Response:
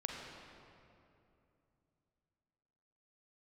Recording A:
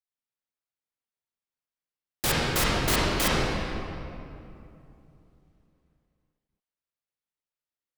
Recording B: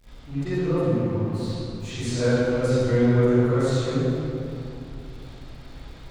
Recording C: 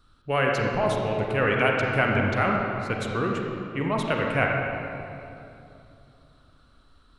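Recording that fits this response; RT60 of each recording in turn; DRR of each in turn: C; 2.7, 2.7, 2.7 s; -7.0, -17.0, -0.5 dB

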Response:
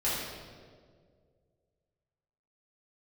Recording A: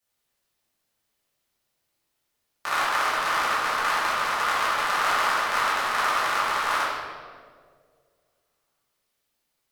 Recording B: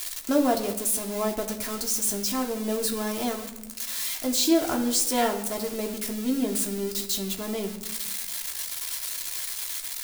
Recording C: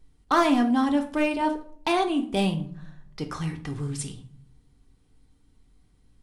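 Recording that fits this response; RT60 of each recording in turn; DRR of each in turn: A; 2.0, 1.0, 0.55 s; -10.0, 1.5, 4.0 dB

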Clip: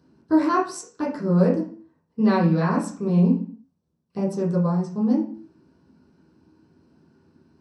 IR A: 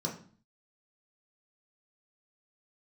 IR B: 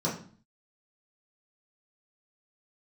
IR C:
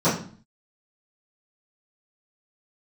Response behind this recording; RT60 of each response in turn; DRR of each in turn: B; 0.45, 0.45, 0.45 s; -2.0, -7.0, -16.5 dB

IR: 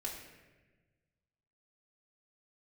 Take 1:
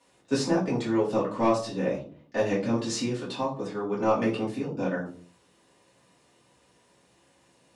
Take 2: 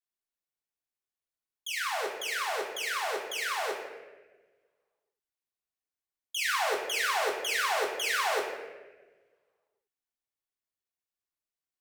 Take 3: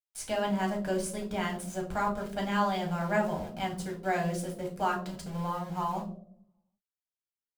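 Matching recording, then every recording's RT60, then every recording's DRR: 2; 0.45, 1.3, 0.65 s; -8.5, -3.5, -0.5 dB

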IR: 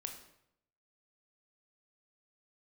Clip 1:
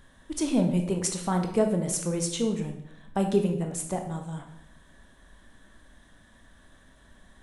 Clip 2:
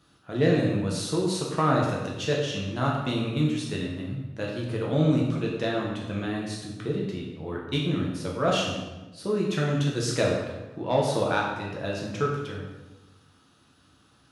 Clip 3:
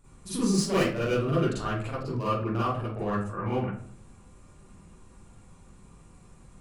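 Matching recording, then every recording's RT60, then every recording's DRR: 1; 0.75, 1.2, 0.55 s; 4.0, -3.0, -11.0 dB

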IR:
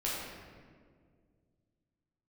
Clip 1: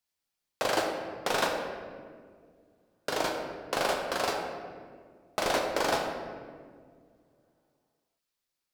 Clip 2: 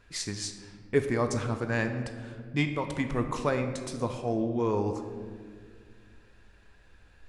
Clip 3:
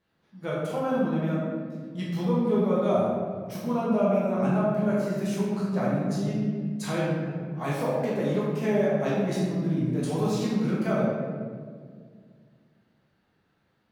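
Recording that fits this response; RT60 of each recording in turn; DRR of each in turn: 3; 2.0, 2.0, 1.9 s; 0.5, 6.0, -7.5 dB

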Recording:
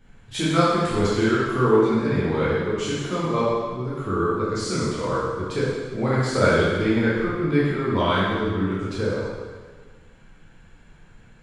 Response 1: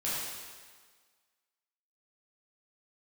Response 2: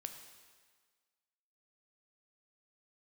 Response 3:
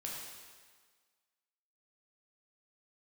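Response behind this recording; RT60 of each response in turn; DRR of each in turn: 1; 1.6, 1.6, 1.6 s; -9.0, 5.5, -3.5 dB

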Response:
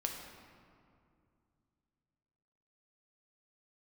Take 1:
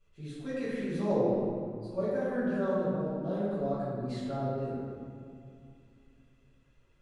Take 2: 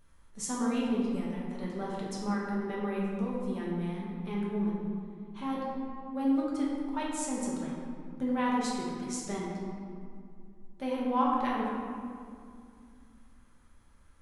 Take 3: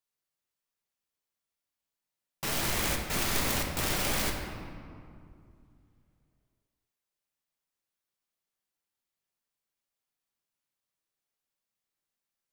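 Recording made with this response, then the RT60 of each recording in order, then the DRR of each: 3; 2.4, 2.4, 2.4 s; -14.0, -5.5, 1.5 dB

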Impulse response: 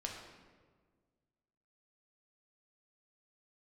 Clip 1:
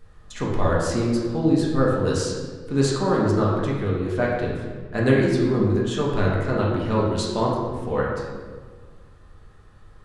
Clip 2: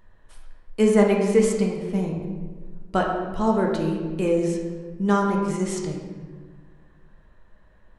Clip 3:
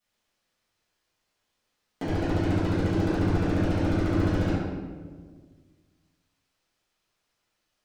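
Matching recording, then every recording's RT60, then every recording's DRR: 2; 1.6, 1.6, 1.6 s; -5.0, -0.5, -14.5 dB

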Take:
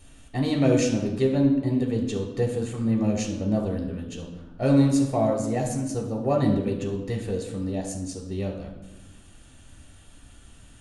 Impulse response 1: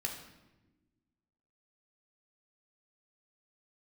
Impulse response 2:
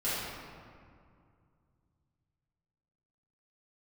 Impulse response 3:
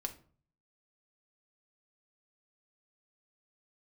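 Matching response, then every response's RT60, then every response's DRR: 1; 1.1, 2.3, 0.45 s; 0.0, -12.5, 4.0 dB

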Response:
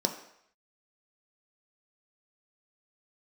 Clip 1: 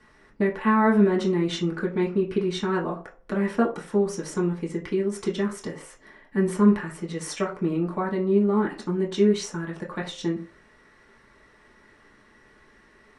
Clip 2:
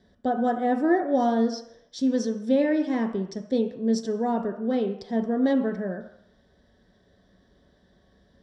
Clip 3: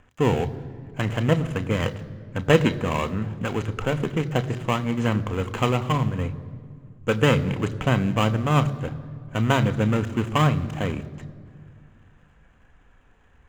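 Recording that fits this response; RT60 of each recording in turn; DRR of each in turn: 2; 0.45, 0.70, 2.1 s; -3.0, 4.0, 10.5 dB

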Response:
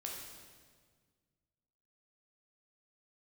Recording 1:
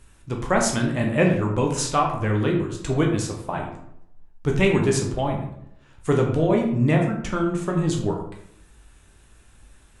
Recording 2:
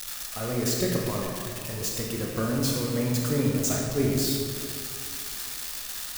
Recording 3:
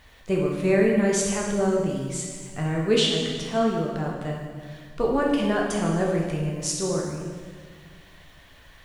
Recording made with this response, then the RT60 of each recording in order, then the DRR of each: 3; 0.75, 2.4, 1.7 s; 0.5, -2.5, -2.0 dB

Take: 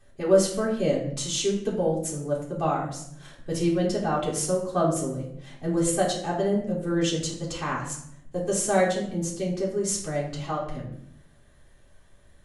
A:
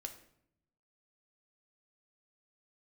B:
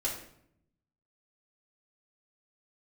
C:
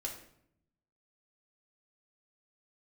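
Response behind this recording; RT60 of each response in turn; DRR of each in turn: B; 0.70, 0.70, 0.70 s; 4.0, -7.0, -2.0 dB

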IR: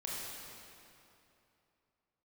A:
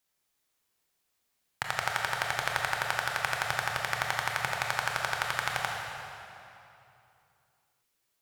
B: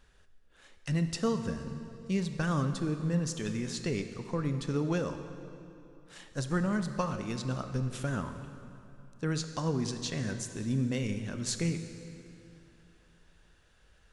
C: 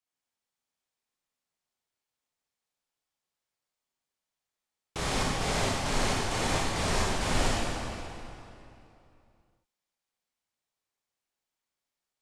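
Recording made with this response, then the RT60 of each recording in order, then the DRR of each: C; 2.9, 2.8, 2.9 s; -1.0, 8.0, -5.5 dB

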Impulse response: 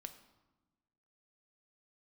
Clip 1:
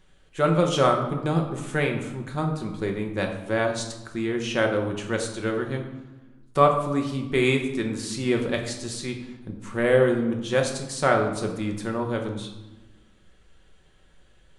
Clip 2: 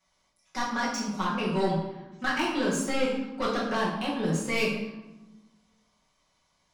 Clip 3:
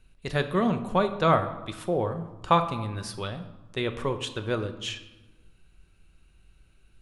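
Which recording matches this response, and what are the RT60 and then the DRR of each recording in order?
3; 1.1, 1.1, 1.1 s; 2.0, -7.5, 7.5 dB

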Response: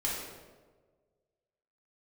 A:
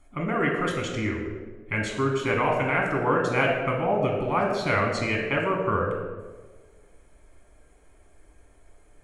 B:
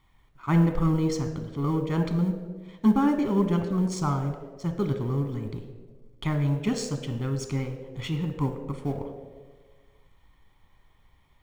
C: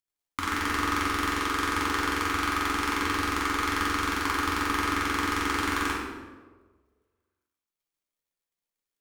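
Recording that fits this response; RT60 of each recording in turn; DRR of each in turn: C; 1.5, 1.5, 1.5 s; -1.0, 6.0, -5.5 dB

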